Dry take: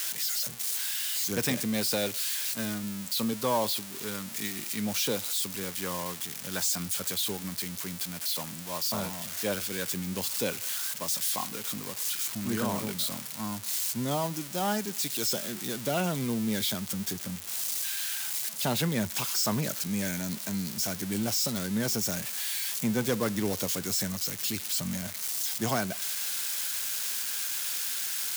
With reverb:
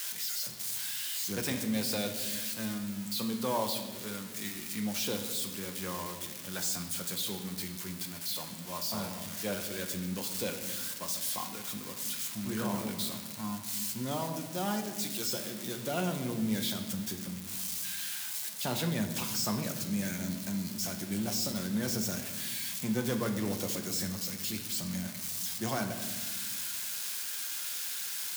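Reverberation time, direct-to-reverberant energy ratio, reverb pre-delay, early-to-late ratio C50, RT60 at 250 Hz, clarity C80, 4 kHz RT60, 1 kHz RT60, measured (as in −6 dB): 1.3 s, 4.0 dB, 6 ms, 8.5 dB, 2.2 s, 10.0 dB, 1.1 s, 1.1 s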